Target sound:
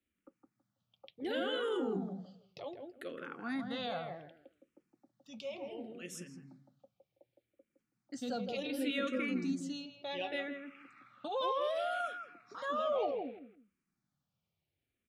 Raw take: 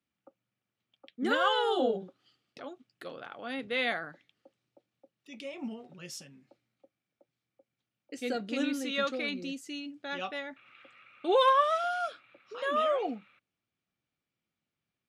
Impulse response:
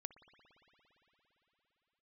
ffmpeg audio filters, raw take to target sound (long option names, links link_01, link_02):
-filter_complex "[0:a]lowshelf=frequency=210:gain=8.5,alimiter=level_in=1.5dB:limit=-24dB:level=0:latency=1:release=19,volume=-1.5dB,asplit=2[link_01][link_02];[link_02]adelay=163,lowpass=frequency=1100:poles=1,volume=-4dB,asplit=2[link_03][link_04];[link_04]adelay=163,lowpass=frequency=1100:poles=1,volume=0.24,asplit=2[link_05][link_06];[link_06]adelay=163,lowpass=frequency=1100:poles=1,volume=0.24[link_07];[link_01][link_03][link_05][link_07]amix=inputs=4:normalize=0,asplit=2[link_08][link_09];[link_09]afreqshift=-0.67[link_10];[link_08][link_10]amix=inputs=2:normalize=1"